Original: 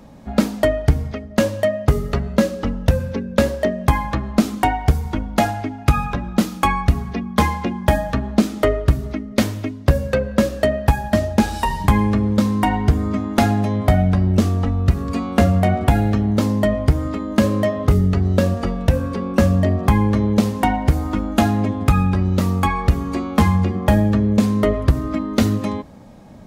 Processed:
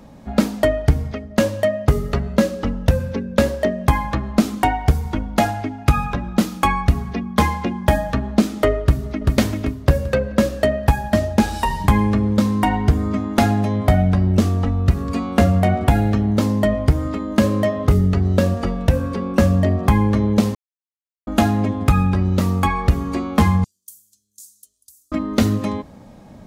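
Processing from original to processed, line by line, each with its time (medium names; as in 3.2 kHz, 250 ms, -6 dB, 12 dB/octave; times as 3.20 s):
8.82–9.33 s: echo throw 390 ms, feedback 40%, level -2.5 dB
20.55–21.27 s: mute
23.64–25.12 s: inverse Chebyshev high-pass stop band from 2.2 kHz, stop band 60 dB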